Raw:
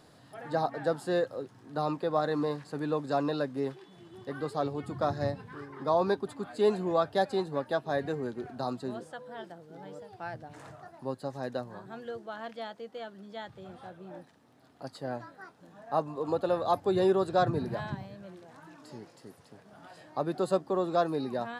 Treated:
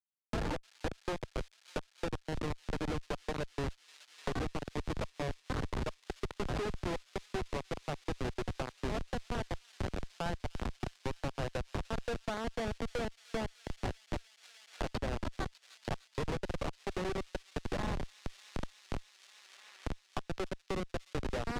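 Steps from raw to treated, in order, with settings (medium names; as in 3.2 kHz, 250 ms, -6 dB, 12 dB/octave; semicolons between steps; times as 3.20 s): high-pass 690 Hz 12 dB/octave; Chebyshev shaper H 2 -26 dB, 4 -12 dB, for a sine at -13.5 dBFS; in parallel at +2.5 dB: peak limiter -25 dBFS, peak gain reduction 11.5 dB; on the sum: compression 12:1, threshold -36 dBFS, peak gain reduction 18 dB; Schmitt trigger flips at -36.5 dBFS; distance through air 69 m; on a send: feedback echo behind a high-pass 300 ms, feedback 82%, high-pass 3.4 kHz, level -14 dB; on the sum: three bands compressed up and down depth 70%; trim +9 dB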